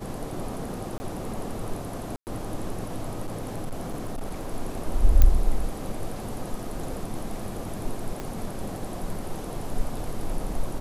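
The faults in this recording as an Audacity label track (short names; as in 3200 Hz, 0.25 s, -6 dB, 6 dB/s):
0.980000	1.000000	gap 20 ms
2.160000	2.270000	gap 0.109 s
3.260000	4.540000	clipped -26.5 dBFS
5.220000	5.220000	pop -6 dBFS
8.200000	8.200000	pop -19 dBFS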